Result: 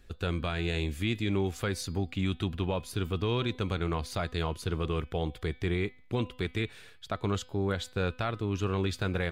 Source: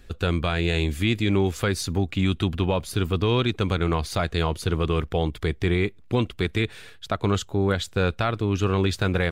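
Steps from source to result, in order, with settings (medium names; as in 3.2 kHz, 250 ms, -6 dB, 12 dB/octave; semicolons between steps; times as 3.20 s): de-hum 252.5 Hz, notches 20; trim -7.5 dB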